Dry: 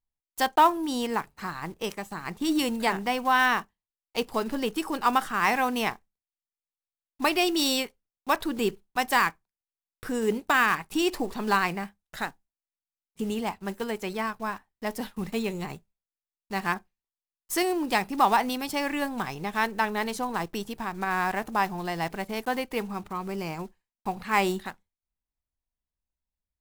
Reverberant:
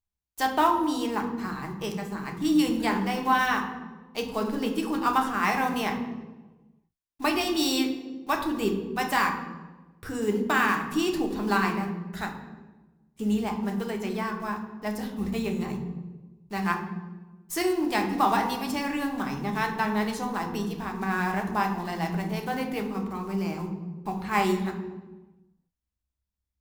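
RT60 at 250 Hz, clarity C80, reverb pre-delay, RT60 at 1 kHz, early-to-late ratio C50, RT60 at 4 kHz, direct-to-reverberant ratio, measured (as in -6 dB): 1.4 s, 9.5 dB, 3 ms, 1.1 s, 7.5 dB, 0.80 s, 2.0 dB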